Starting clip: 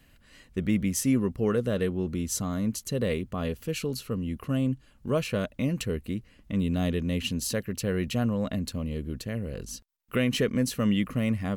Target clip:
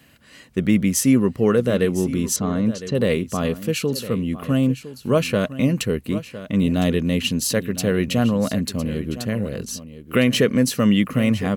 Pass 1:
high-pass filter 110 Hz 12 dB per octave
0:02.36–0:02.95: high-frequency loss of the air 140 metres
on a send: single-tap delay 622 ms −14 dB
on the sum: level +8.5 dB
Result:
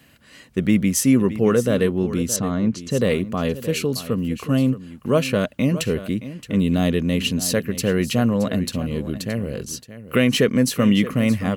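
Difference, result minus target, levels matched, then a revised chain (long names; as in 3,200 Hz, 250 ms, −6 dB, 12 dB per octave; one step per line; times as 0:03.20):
echo 386 ms early
high-pass filter 110 Hz 12 dB per octave
0:02.36–0:02.95: high-frequency loss of the air 140 metres
on a send: single-tap delay 1,008 ms −14 dB
on the sum: level +8.5 dB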